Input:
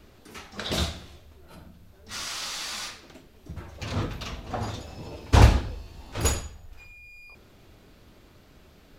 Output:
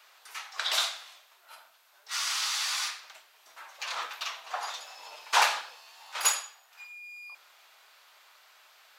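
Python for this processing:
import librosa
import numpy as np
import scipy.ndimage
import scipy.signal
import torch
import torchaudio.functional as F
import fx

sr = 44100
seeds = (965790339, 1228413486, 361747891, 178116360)

y = scipy.signal.sosfilt(scipy.signal.butter(4, 850.0, 'highpass', fs=sr, output='sos'), x)
y = F.gain(torch.from_numpy(y), 3.5).numpy()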